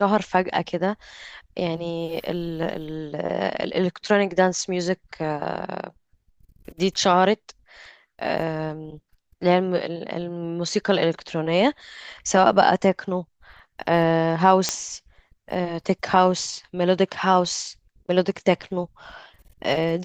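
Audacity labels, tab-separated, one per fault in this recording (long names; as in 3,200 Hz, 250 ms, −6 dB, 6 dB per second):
14.690000	14.690000	click −5 dBFS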